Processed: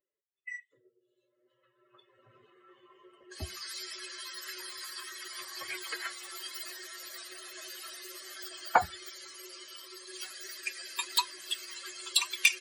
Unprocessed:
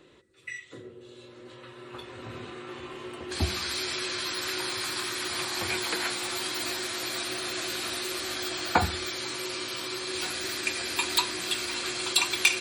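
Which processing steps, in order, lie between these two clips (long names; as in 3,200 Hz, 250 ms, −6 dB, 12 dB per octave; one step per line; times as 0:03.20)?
spectral dynamics exaggerated over time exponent 2
low shelf with overshoot 450 Hz −10.5 dB, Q 1.5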